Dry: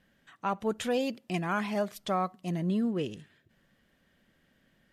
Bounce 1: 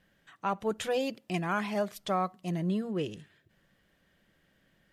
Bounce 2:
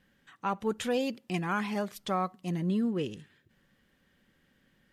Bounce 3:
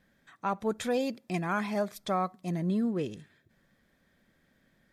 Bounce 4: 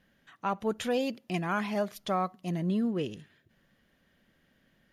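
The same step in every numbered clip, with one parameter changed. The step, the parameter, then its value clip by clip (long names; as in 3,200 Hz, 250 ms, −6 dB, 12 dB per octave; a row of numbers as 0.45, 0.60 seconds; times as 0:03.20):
notch filter, centre frequency: 240, 650, 2,900, 8,000 Hertz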